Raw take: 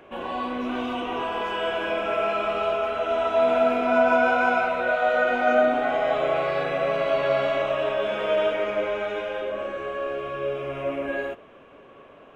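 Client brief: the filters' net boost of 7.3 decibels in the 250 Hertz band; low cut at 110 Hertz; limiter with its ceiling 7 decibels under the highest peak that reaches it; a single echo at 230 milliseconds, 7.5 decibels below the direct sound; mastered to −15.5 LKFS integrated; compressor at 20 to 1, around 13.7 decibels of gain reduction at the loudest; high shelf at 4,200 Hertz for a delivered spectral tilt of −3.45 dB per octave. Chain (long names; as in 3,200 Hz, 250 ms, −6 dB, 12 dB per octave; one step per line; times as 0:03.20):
high-pass filter 110 Hz
parametric band 250 Hz +8 dB
high-shelf EQ 4,200 Hz −4 dB
downward compressor 20 to 1, threshold −27 dBFS
brickwall limiter −25.5 dBFS
single-tap delay 230 ms −7.5 dB
level +17.5 dB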